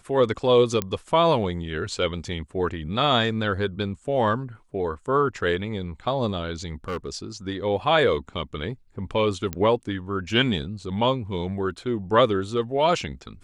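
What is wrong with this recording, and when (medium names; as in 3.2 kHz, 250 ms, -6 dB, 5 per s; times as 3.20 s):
0.82 s: pop -10 dBFS
6.88–7.17 s: clipped -25 dBFS
9.53 s: pop -13 dBFS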